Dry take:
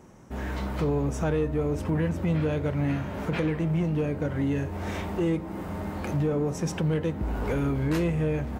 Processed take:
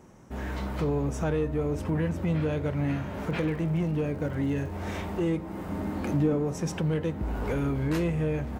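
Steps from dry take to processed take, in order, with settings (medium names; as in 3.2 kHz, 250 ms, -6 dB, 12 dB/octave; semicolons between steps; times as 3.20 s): 3.23–4.73 s: crackle 99 per s -41 dBFS; 5.69–6.36 s: peaking EQ 270 Hz +8 dB 0.73 oct; trim -1.5 dB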